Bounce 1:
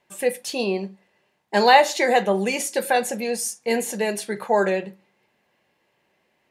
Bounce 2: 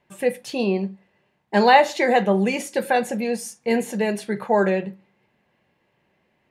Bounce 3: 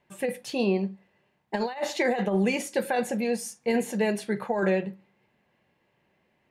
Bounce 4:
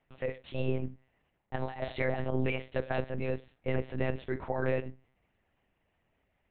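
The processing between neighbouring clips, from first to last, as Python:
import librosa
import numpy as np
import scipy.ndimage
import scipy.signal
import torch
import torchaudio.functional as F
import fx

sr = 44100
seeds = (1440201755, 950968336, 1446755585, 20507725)

y1 = fx.bass_treble(x, sr, bass_db=8, treble_db=-8)
y2 = fx.over_compress(y1, sr, threshold_db=-19.0, ratio=-0.5)
y2 = y2 * librosa.db_to_amplitude(-4.5)
y3 = fx.lpc_monotone(y2, sr, seeds[0], pitch_hz=130.0, order=8)
y3 = y3 * librosa.db_to_amplitude(-5.5)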